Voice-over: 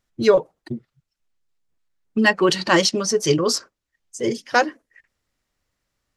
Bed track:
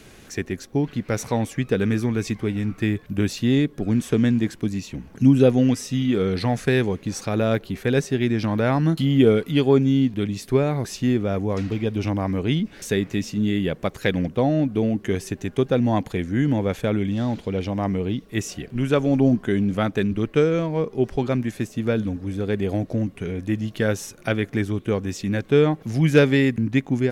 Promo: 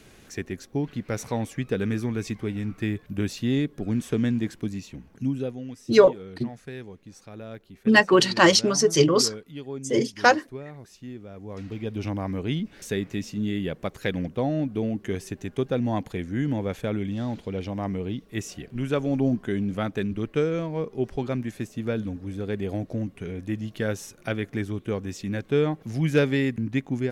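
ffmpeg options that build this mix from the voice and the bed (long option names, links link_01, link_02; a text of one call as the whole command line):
ffmpeg -i stem1.wav -i stem2.wav -filter_complex "[0:a]adelay=5700,volume=0dB[link_01];[1:a]volume=8dB,afade=type=out:start_time=4.63:duration=0.96:silence=0.211349,afade=type=in:start_time=11.35:duration=0.68:silence=0.223872[link_02];[link_01][link_02]amix=inputs=2:normalize=0" out.wav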